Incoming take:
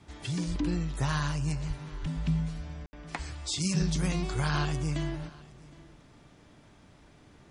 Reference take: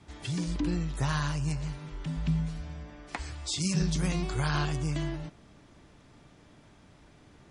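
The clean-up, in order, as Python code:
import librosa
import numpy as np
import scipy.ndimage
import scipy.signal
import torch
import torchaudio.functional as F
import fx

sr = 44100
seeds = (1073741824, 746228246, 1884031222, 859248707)

y = fx.fix_deplosive(x, sr, at_s=(0.49, 1.67, 2.01))
y = fx.fix_ambience(y, sr, seeds[0], print_start_s=6.73, print_end_s=7.23, start_s=2.86, end_s=2.93)
y = fx.fix_echo_inverse(y, sr, delay_ms=766, level_db=-22.5)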